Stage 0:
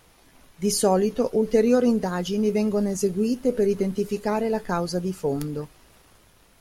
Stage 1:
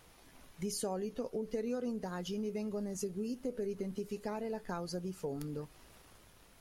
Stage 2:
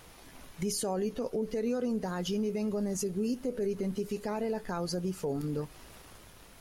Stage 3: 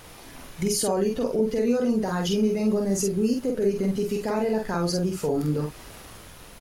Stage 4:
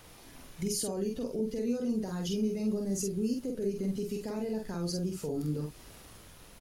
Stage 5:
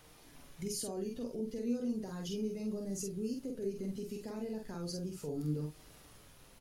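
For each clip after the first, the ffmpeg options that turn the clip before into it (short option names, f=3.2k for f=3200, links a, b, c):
-af "acompressor=threshold=-34dB:ratio=3,volume=-4.5dB"
-af "alimiter=level_in=7.5dB:limit=-24dB:level=0:latency=1:release=23,volume=-7.5dB,volume=7.5dB"
-filter_complex "[0:a]asplit=2[a][b];[b]adelay=46,volume=-3dB[c];[a][c]amix=inputs=2:normalize=0,volume=6.5dB"
-filter_complex "[0:a]acrossover=split=440|3000[a][b][c];[b]acompressor=threshold=-55dB:ratio=1.5[d];[a][d][c]amix=inputs=3:normalize=0,volume=-7dB"
-af "flanger=delay=6.5:depth=2.1:regen=71:speed=0.35:shape=sinusoidal,volume=-1.5dB"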